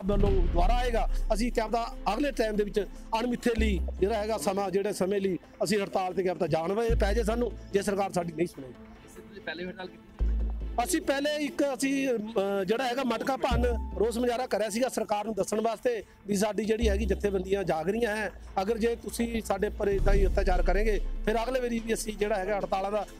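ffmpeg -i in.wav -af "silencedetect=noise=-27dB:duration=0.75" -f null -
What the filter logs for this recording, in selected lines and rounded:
silence_start: 8.46
silence_end: 9.48 | silence_duration: 1.02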